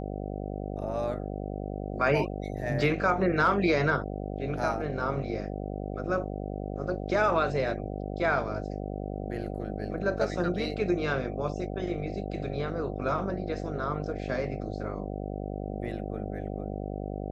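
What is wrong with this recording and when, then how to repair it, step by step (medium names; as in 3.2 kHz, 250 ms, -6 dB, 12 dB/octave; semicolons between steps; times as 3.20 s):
buzz 50 Hz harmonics 15 -35 dBFS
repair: de-hum 50 Hz, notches 15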